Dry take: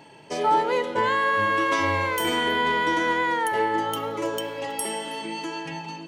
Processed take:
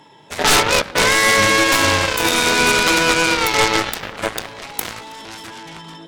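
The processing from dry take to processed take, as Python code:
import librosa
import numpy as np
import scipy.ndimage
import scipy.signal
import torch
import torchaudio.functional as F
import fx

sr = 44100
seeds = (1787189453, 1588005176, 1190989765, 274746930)

y = fx.formant_shift(x, sr, semitones=3)
y = fx.cheby_harmonics(y, sr, harmonics=(3, 7), levels_db=(-16, -21), full_scale_db=-8.0)
y = fx.fold_sine(y, sr, drive_db=18, ceiling_db=-6.0)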